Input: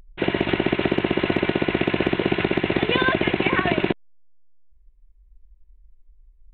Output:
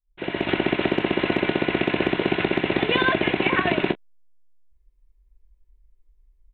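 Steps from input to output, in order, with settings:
fade in at the beginning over 0.52 s
low-shelf EQ 150 Hz −6 dB
double-tracking delay 28 ms −14 dB

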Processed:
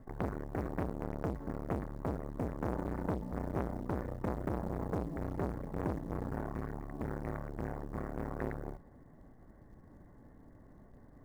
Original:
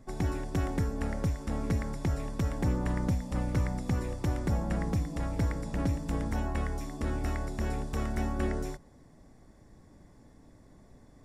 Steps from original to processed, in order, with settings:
Butterworth low-pass 2,000 Hz 72 dB per octave
floating-point word with a short mantissa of 4 bits
saturating transformer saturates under 900 Hz

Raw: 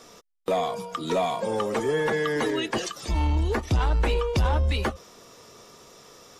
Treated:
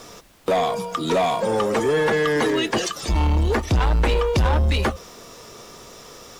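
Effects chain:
harmonic generator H 5 −21 dB, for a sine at −15 dBFS
background noise pink −57 dBFS
level +4 dB

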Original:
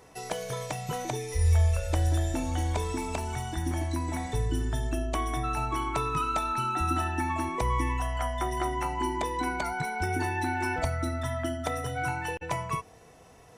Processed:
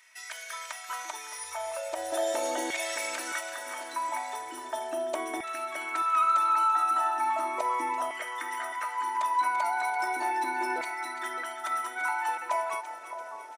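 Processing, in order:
0:02.12–0:03.39: ceiling on every frequency bin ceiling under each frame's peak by 17 dB
high-pass filter 200 Hz 6 dB per octave
comb filter 3.2 ms, depth 66%
brickwall limiter −21 dBFS, peak gain reduction 7 dB
auto-filter high-pass saw down 0.37 Hz 430–2,100 Hz
echo with a time of its own for lows and highs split 1,400 Hz, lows 615 ms, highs 339 ms, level −10 dB
level −2 dB

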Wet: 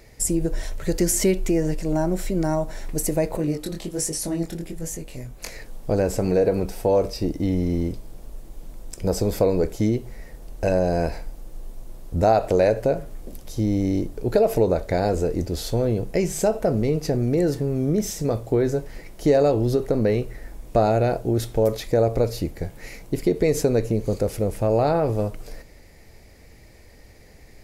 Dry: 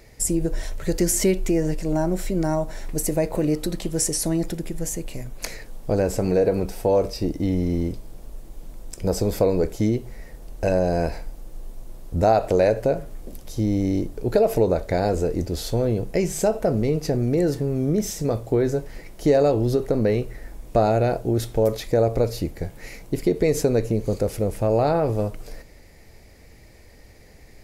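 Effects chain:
0:03.37–0:05.56: chorus effect 1.3 Hz, delay 18.5 ms, depth 6.3 ms

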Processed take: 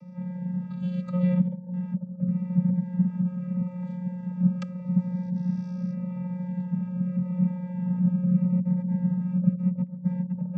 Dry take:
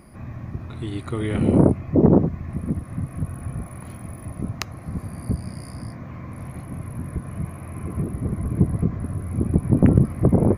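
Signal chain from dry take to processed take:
compressor whose output falls as the input rises −24 dBFS, ratio −0.5
channel vocoder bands 16, square 180 Hz
phaser whose notches keep moving one way falling 0.82 Hz
level +2.5 dB

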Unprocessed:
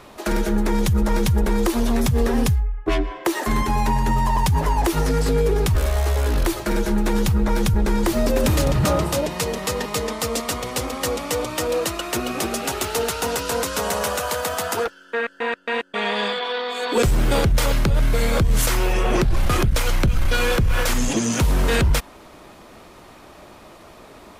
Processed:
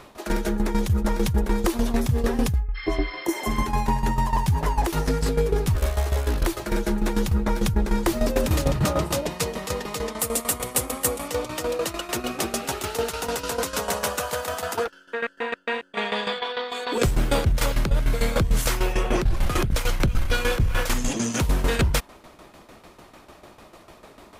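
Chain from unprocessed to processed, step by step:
shaped tremolo saw down 6.7 Hz, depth 75%
0:02.78–0:03.59: healed spectral selection 1,100–5,300 Hz after
0:10.19–0:11.28: high shelf with overshoot 7,100 Hz +8.5 dB, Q 1.5

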